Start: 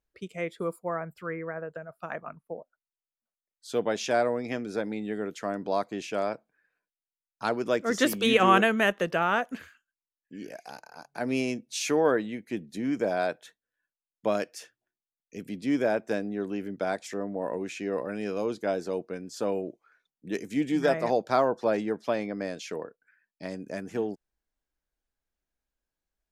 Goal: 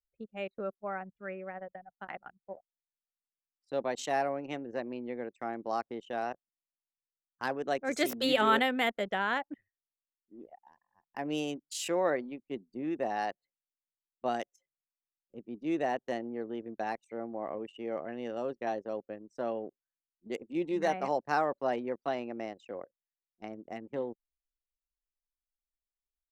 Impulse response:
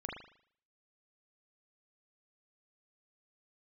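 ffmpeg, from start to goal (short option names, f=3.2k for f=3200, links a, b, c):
-af "asetrate=50951,aresample=44100,atempo=0.865537,anlmdn=3.98,volume=-5.5dB"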